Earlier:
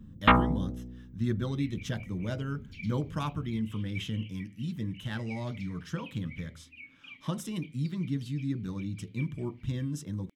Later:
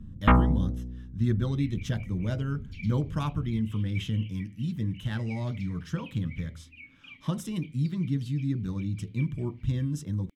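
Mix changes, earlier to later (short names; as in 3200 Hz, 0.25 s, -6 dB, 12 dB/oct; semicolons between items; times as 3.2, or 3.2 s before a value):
first sound: add air absorption 460 m; master: add low shelf 120 Hz +11 dB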